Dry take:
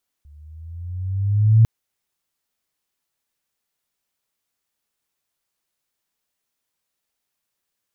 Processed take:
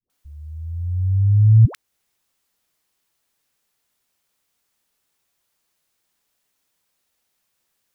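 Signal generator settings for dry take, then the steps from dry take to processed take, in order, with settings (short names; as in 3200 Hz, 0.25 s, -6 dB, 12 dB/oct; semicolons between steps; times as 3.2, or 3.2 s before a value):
gliding synth tone sine, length 1.40 s, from 71.7 Hz, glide +8 st, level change +36 dB, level -7.5 dB
in parallel at +1.5 dB: compressor, threshold -22 dBFS; on the sum: dispersion highs, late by 99 ms, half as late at 410 Hz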